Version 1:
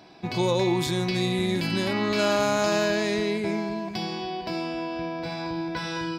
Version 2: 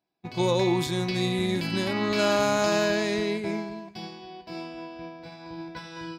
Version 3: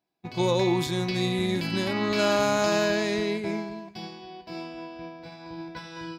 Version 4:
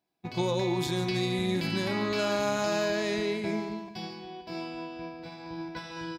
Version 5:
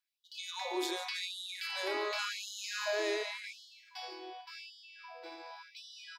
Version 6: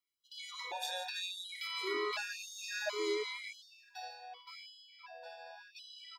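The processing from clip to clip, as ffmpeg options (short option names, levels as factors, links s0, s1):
-af "agate=range=0.0224:threshold=0.0708:ratio=3:detection=peak"
-af "equalizer=f=8700:t=o:w=0.22:g=-3"
-af "acompressor=threshold=0.0562:ratio=6,aecho=1:1:146:0.266"
-af "afftfilt=real='re*gte(b*sr/1024,300*pow(2900/300,0.5+0.5*sin(2*PI*0.89*pts/sr)))':imag='im*gte(b*sr/1024,300*pow(2900/300,0.5+0.5*sin(2*PI*0.89*pts/sr)))':win_size=1024:overlap=0.75,volume=0.75"
-af "afftfilt=real='re*gt(sin(2*PI*0.69*pts/sr)*(1-2*mod(floor(b*sr/1024/480),2)),0)':imag='im*gt(sin(2*PI*0.69*pts/sr)*(1-2*mod(floor(b*sr/1024/480),2)),0)':win_size=1024:overlap=0.75,volume=1.12"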